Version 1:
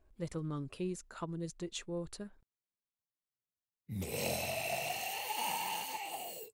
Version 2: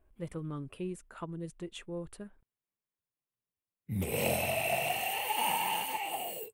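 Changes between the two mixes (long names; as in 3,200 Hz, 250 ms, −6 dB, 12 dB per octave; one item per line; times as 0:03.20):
background +6.0 dB
master: add flat-topped bell 5,300 Hz −10 dB 1.1 octaves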